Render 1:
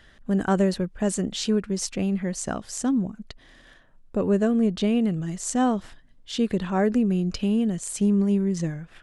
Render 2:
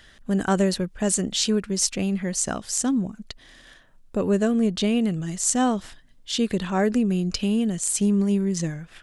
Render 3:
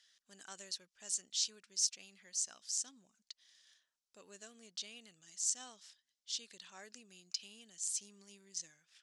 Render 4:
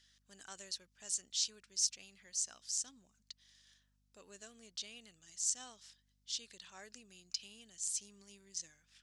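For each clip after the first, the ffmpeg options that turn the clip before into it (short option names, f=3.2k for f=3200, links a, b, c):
-af "highshelf=f=2.7k:g=9"
-af "bandpass=f=5.6k:t=q:w=2:csg=0,volume=-7.5dB"
-af "aeval=exprs='val(0)+0.000158*(sin(2*PI*50*n/s)+sin(2*PI*2*50*n/s)/2+sin(2*PI*3*50*n/s)/3+sin(2*PI*4*50*n/s)/4+sin(2*PI*5*50*n/s)/5)':c=same"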